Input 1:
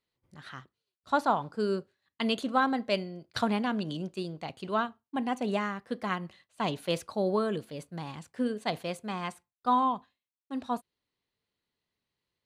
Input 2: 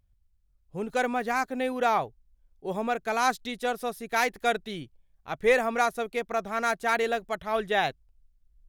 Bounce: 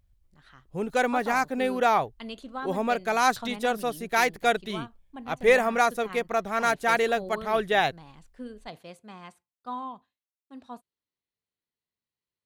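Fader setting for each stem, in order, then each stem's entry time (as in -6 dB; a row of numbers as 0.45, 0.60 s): -10.0, +2.5 dB; 0.00, 0.00 s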